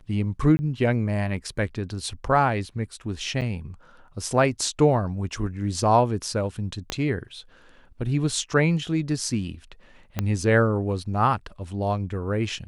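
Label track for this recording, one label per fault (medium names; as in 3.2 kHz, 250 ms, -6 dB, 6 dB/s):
0.570000	0.590000	dropout 20 ms
3.410000	3.420000	dropout 7.5 ms
6.900000	6.900000	pop -12 dBFS
10.190000	10.190000	pop -11 dBFS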